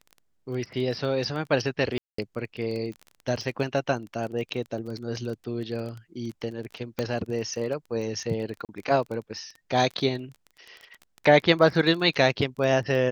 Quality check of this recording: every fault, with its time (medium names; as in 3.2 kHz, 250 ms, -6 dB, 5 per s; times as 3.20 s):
crackle 21 per s -33 dBFS
1.98–2.18 s: dropout 204 ms
6.99 s: pop -14 dBFS
8.65–8.69 s: dropout 38 ms